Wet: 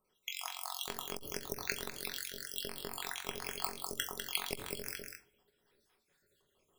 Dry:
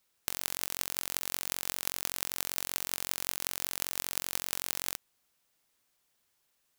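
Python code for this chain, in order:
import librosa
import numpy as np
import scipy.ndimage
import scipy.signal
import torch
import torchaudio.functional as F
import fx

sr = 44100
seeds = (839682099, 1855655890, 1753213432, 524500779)

p1 = fx.spec_dropout(x, sr, seeds[0], share_pct=73)
p2 = fx.high_shelf(p1, sr, hz=3400.0, db=-11.0)
p3 = fx.level_steps(p2, sr, step_db=23)
p4 = p2 + (p3 * librosa.db_to_amplitude(1.0))
p5 = fx.small_body(p4, sr, hz=(420.0, 3300.0), ring_ms=65, db=13)
p6 = fx.volume_shaper(p5, sr, bpm=131, per_beat=1, depth_db=-7, release_ms=154.0, shape='slow start')
p7 = p6 + fx.echo_single(p6, sr, ms=199, db=-6.5, dry=0)
p8 = fx.room_shoebox(p7, sr, seeds[1], volume_m3=240.0, walls='furnished', distance_m=1.0)
p9 = fx.transformer_sat(p8, sr, knee_hz=890.0)
y = p9 * librosa.db_to_amplitude(5.5)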